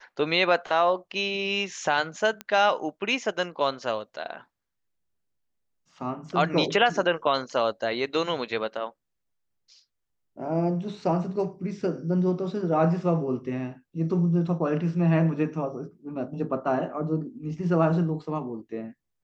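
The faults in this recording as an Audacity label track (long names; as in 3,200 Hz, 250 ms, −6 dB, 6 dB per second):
2.410000	2.410000	click −18 dBFS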